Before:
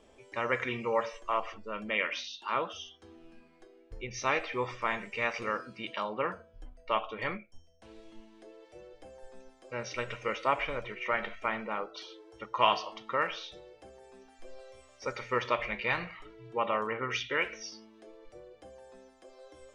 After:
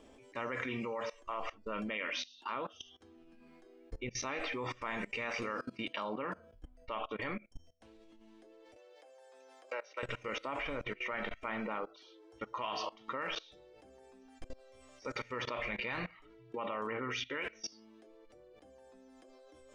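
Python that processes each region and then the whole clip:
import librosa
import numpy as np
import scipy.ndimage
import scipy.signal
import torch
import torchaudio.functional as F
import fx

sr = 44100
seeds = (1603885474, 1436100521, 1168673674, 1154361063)

y = fx.chain(x, sr, fx.highpass(hz=480.0, slope=24),
    fx.high_shelf(hz=2900.0, db=-7.5),
    fx.band_squash(depth_pct=100), at=(8.76, 10.03))
y = fx.peak_eq(y, sr, hz=270.0, db=9.5, octaves=0.3)
y = fx.level_steps(y, sr, step_db=21)
y = y * librosa.db_to_amplitude(4.0)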